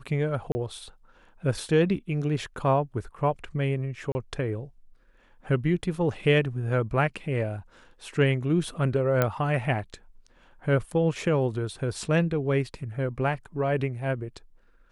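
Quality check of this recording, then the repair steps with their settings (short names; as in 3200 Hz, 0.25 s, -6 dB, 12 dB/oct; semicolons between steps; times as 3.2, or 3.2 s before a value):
0.52–0.55 gap 30 ms
4.12–4.15 gap 30 ms
9.22 pop -10 dBFS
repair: de-click; interpolate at 0.52, 30 ms; interpolate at 4.12, 30 ms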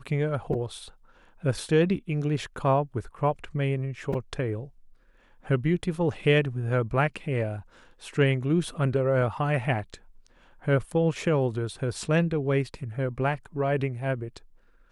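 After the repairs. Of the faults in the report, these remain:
9.22 pop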